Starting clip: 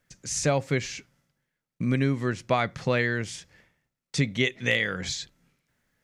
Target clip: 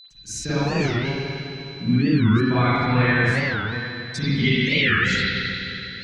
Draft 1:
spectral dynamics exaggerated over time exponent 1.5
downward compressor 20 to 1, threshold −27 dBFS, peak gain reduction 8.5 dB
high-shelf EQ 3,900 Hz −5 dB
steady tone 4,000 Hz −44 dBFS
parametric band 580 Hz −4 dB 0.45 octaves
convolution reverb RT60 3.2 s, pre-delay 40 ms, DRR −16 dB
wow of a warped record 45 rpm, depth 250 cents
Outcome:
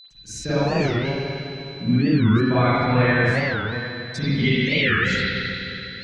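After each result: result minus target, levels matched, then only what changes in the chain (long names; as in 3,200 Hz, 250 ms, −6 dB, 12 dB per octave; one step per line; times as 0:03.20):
8,000 Hz band −4.0 dB; 500 Hz band +3.0 dB
remove: high-shelf EQ 3,900 Hz −5 dB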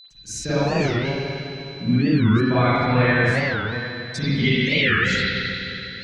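500 Hz band +3.0 dB
change: parametric band 580 Hz −12.5 dB 0.45 octaves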